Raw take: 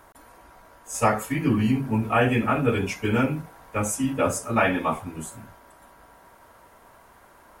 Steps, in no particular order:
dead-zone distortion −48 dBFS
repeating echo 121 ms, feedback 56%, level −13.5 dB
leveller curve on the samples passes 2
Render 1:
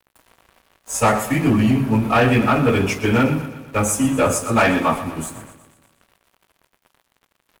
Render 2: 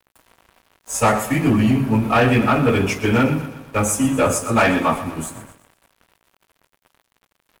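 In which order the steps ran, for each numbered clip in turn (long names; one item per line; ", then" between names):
leveller curve on the samples, then dead-zone distortion, then repeating echo
leveller curve on the samples, then repeating echo, then dead-zone distortion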